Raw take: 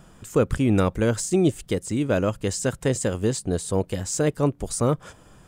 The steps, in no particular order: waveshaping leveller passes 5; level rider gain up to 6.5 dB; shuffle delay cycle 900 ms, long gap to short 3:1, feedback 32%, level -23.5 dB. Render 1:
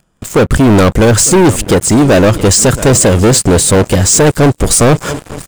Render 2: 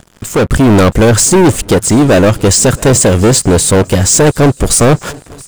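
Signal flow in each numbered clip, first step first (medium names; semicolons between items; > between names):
shuffle delay > level rider > waveshaping leveller; waveshaping leveller > shuffle delay > level rider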